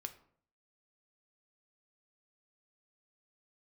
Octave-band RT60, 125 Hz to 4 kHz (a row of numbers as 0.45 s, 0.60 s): 0.70 s, 0.65 s, 0.60 s, 0.55 s, 0.45 s, 0.35 s